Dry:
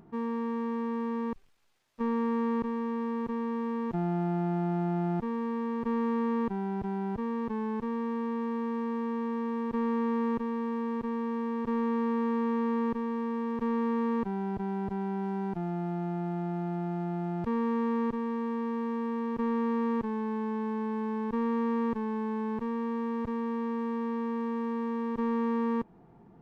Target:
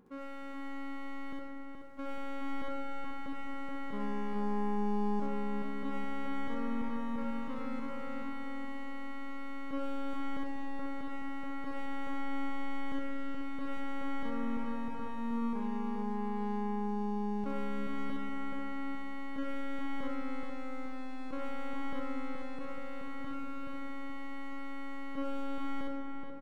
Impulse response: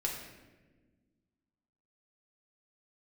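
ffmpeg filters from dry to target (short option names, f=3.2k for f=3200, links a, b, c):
-filter_complex "[0:a]asetrate=52444,aresample=44100,atempo=0.840896,aeval=exprs='clip(val(0),-1,0.0126)':c=same,asplit=2[a][b];[b]adelay=426,lowpass=f=2k:p=1,volume=-3.5dB,asplit=2[c][d];[d]adelay=426,lowpass=f=2k:p=1,volume=0.47,asplit=2[e][f];[f]adelay=426,lowpass=f=2k:p=1,volume=0.47,asplit=2[g][h];[h]adelay=426,lowpass=f=2k:p=1,volume=0.47,asplit=2[i][j];[j]adelay=426,lowpass=f=2k:p=1,volume=0.47,asplit=2[k][l];[l]adelay=426,lowpass=f=2k:p=1,volume=0.47[m];[a][c][e][g][i][k][m]amix=inputs=7:normalize=0,asplit=2[n][o];[1:a]atrim=start_sample=2205,highshelf=f=3.1k:g=9.5,adelay=64[p];[o][p]afir=irnorm=-1:irlink=0,volume=-5.5dB[q];[n][q]amix=inputs=2:normalize=0,volume=-8.5dB"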